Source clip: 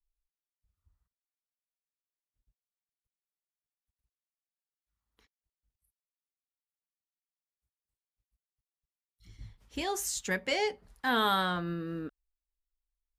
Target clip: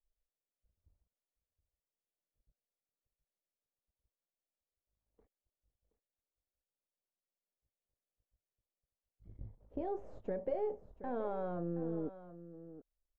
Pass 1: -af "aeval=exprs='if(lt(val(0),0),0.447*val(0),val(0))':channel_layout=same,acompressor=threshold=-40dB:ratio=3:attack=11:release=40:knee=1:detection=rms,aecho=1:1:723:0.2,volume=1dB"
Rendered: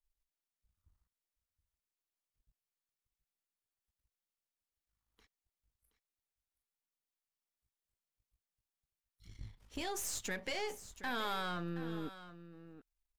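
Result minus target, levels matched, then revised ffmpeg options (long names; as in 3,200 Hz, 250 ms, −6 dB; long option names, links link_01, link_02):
500 Hz band −6.5 dB
-af "aeval=exprs='if(lt(val(0),0),0.447*val(0),val(0))':channel_layout=same,acompressor=threshold=-40dB:ratio=3:attack=11:release=40:knee=1:detection=rms,lowpass=frequency=570:width_type=q:width=2.7,aecho=1:1:723:0.2,volume=1dB"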